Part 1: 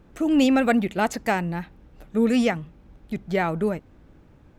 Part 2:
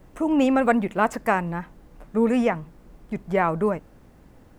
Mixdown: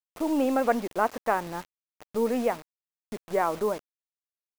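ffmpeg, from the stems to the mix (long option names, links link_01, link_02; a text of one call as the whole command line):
ffmpeg -i stem1.wav -i stem2.wav -filter_complex "[0:a]acompressor=threshold=-27dB:ratio=4,aeval=exprs='(tanh(11.2*val(0)+0.65)-tanh(0.65))/11.2':channel_layout=same,volume=-7dB[link_01];[1:a]highpass=290,adelay=0.6,volume=-3.5dB[link_02];[link_01][link_02]amix=inputs=2:normalize=0,acrossover=split=4300[link_03][link_04];[link_04]acompressor=threshold=-57dB:ratio=4:attack=1:release=60[link_05];[link_03][link_05]amix=inputs=2:normalize=0,equalizer=frequency=3500:width=1.1:gain=-8,acrusher=bits=6:mix=0:aa=0.000001" out.wav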